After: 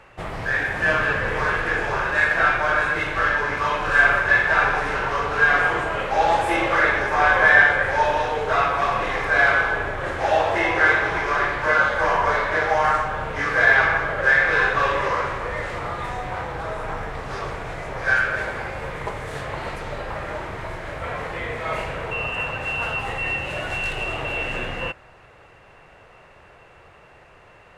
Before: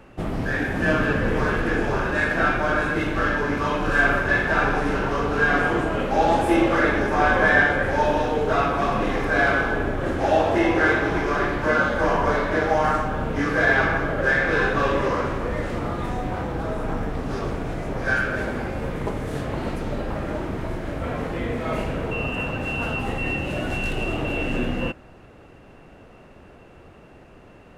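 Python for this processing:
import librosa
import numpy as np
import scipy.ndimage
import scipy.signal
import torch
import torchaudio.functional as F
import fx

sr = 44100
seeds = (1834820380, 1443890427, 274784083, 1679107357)

y = fx.graphic_eq(x, sr, hz=(125, 250, 500, 1000, 2000, 4000, 8000), db=(3, -10, 4, 7, 9, 5, 6))
y = y * librosa.db_to_amplitude(-5.5)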